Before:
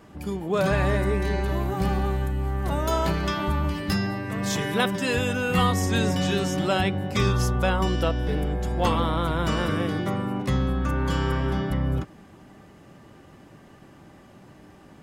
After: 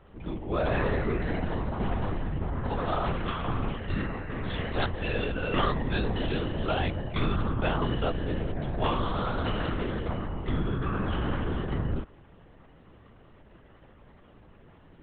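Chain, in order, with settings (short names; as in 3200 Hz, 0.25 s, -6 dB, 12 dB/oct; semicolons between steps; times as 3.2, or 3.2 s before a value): LPC vocoder at 8 kHz whisper; gain -4.5 dB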